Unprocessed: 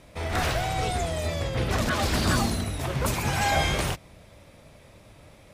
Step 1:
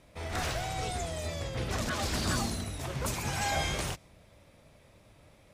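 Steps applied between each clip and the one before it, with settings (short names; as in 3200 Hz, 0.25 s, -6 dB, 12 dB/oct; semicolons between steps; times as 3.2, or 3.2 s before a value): dynamic EQ 6700 Hz, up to +5 dB, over -48 dBFS, Q 0.98; gain -7.5 dB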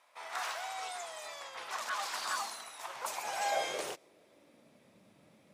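high-pass sweep 980 Hz -> 200 Hz, 2.81–4.92; gain -5 dB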